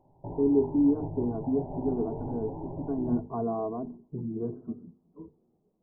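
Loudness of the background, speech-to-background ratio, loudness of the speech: −39.5 LKFS, 9.5 dB, −30.0 LKFS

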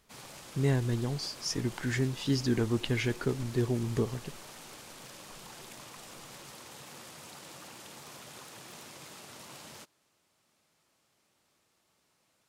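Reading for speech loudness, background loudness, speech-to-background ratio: −31.5 LKFS, −47.0 LKFS, 15.5 dB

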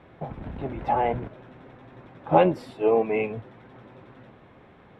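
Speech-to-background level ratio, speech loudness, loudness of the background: 16.0 dB, −24.5 LKFS, −40.5 LKFS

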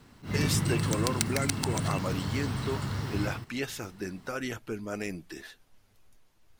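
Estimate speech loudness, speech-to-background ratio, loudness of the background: −35.0 LKFS, −3.5 dB, −31.5 LKFS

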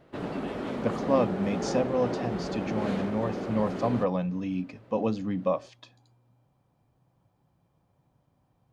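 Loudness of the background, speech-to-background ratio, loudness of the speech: −33.5 LKFS, 3.5 dB, −30.0 LKFS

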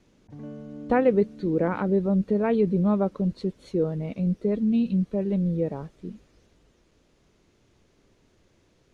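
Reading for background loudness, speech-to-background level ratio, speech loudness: −42.0 LKFS, 17.0 dB, −25.0 LKFS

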